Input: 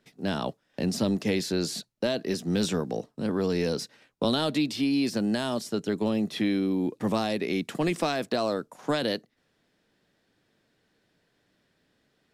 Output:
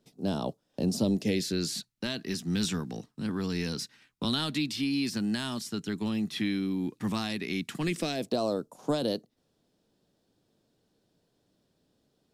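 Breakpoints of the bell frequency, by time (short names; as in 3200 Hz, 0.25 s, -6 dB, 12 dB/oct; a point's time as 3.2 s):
bell -15 dB 1.2 oct
0.96 s 1900 Hz
1.75 s 550 Hz
7.79 s 550 Hz
8.37 s 1900 Hz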